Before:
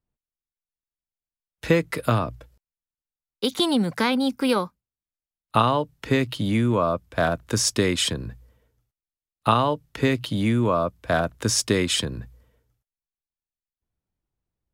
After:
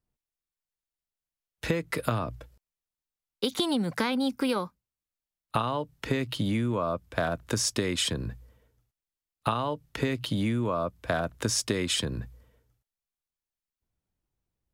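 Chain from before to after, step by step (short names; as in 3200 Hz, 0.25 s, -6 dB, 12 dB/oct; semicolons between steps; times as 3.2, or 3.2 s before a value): compressor, threshold -24 dBFS, peak gain reduction 10.5 dB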